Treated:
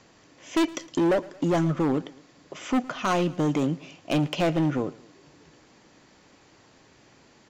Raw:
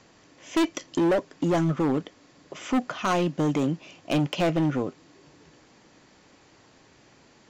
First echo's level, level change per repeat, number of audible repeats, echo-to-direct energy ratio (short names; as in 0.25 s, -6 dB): -21.0 dB, -6.0 dB, 2, -20.0 dB